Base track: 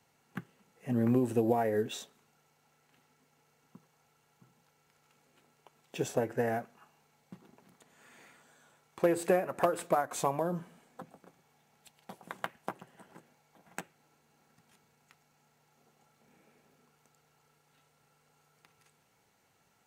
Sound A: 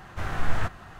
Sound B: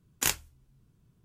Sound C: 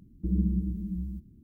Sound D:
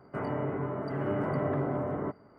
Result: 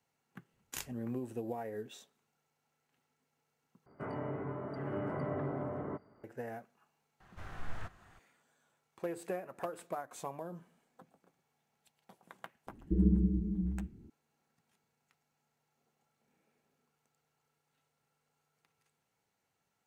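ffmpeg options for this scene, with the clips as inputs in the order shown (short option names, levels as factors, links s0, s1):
-filter_complex "[0:a]volume=0.266[s0];[3:a]lowpass=f=430:t=q:w=4.3[s1];[s0]asplit=2[s2][s3];[s2]atrim=end=3.864[s4];[4:a]atrim=end=2.38,asetpts=PTS-STARTPTS,volume=0.447[s5];[s3]atrim=start=6.236[s6];[2:a]atrim=end=1.24,asetpts=PTS-STARTPTS,volume=0.168,afade=t=in:d=0.004:c=hsin,afade=t=out:st=1.236:d=0.004:c=hsin,adelay=510[s7];[1:a]atrim=end=0.99,asetpts=PTS-STARTPTS,volume=0.158,afade=t=in:d=0.004:c=hsin,afade=t=out:st=0.986:d=0.004:c=hsin,adelay=7200[s8];[s1]atrim=end=1.43,asetpts=PTS-STARTPTS,volume=0.75,afade=t=in:d=0.004:c=hsin,afade=t=out:st=1.426:d=0.004:c=hsin,adelay=12670[s9];[s4][s5]acrossfade=d=0.004:c1=hsin:c2=hsin[s10];[s10][s6]acrossfade=d=0.004:c1=hsin:c2=hsin[s11];[s11][s7][s8][s9]amix=inputs=4:normalize=0"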